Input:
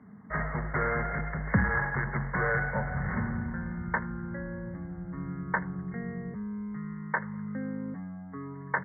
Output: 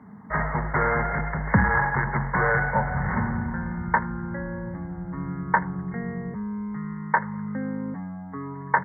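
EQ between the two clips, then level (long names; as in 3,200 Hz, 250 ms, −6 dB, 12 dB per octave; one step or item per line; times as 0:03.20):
parametric band 900 Hz +8.5 dB 0.39 octaves
+5.0 dB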